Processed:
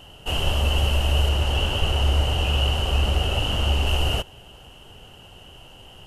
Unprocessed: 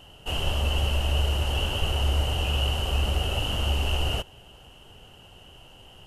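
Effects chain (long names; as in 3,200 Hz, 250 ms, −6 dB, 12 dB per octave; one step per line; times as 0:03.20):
0:01.29–0:03.87: high-shelf EQ 11,000 Hz −8.5 dB
level +4 dB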